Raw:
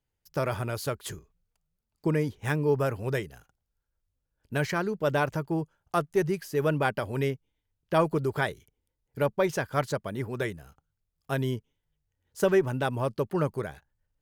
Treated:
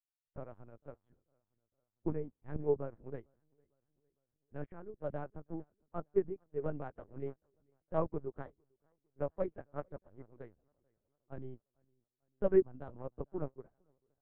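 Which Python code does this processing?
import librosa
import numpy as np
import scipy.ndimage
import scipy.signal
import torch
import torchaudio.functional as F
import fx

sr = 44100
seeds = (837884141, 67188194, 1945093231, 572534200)

p1 = scipy.signal.sosfilt(scipy.signal.bessel(2, 740.0, 'lowpass', norm='mag', fs=sr, output='sos'), x)
p2 = p1 + fx.echo_feedback(p1, sr, ms=453, feedback_pct=54, wet_db=-15, dry=0)
p3 = fx.lpc_vocoder(p2, sr, seeds[0], excitation='pitch_kept', order=8)
p4 = fx.upward_expand(p3, sr, threshold_db=-40.0, expansion=2.5)
y = F.gain(torch.from_numpy(p4), -1.0).numpy()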